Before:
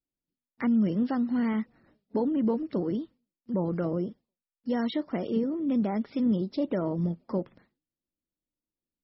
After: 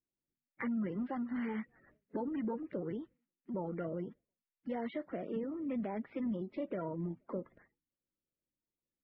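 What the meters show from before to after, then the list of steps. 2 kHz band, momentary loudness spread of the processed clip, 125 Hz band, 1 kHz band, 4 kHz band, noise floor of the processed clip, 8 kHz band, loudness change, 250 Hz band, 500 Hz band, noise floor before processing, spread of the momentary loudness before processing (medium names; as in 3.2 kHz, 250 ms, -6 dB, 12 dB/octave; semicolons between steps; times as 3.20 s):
-5.0 dB, 7 LU, -11.5 dB, -7.0 dB, under -15 dB, under -85 dBFS, no reading, -10.5 dB, -11.0 dB, -8.5 dB, under -85 dBFS, 7 LU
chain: coarse spectral quantiser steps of 30 dB; four-pole ladder low-pass 2.4 kHz, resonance 50%; compression 1.5:1, threshold -49 dBFS, peak gain reduction 6.5 dB; trim +5 dB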